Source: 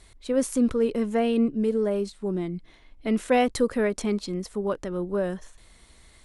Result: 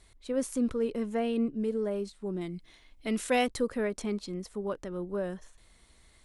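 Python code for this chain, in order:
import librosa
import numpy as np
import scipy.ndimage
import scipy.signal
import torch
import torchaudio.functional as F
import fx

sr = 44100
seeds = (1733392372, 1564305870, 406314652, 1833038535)

y = fx.high_shelf(x, sr, hz=2500.0, db=11.0, at=(2.41, 3.47))
y = F.gain(torch.from_numpy(y), -6.5).numpy()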